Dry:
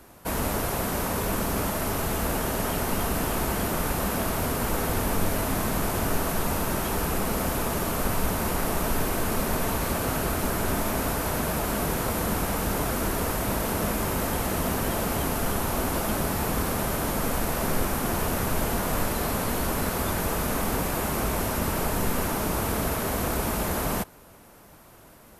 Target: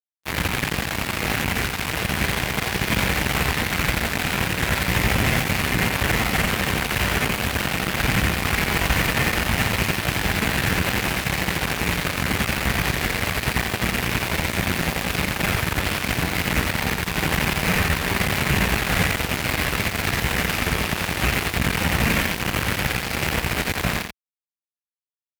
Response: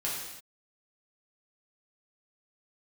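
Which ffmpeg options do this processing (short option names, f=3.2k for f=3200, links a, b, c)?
-filter_complex "[0:a]acrossover=split=940[a][b];[b]aeval=exprs='sgn(val(0))*max(abs(val(0))-0.00316,0)':c=same[c];[a][c]amix=inputs=2:normalize=0,equalizer=f=125:t=o:w=1:g=3,equalizer=f=250:t=o:w=1:g=-10,equalizer=f=500:t=o:w=1:g=-7,equalizer=f=1k:t=o:w=1:g=-8,equalizer=f=2k:t=o:w=1:g=11,equalizer=f=4k:t=o:w=1:g=-7,asplit=2[d][e];[1:a]atrim=start_sample=2205,atrim=end_sample=6174[f];[e][f]afir=irnorm=-1:irlink=0,volume=-13dB[g];[d][g]amix=inputs=2:normalize=0,adynamicsmooth=sensitivity=4.5:basefreq=3.4k,asetrate=50951,aresample=44100,atempo=0.865537,highshelf=f=12k:g=11,acrusher=bits=3:mix=0:aa=0.5,highpass=51,aecho=1:1:86:0.501,volume=6.5dB"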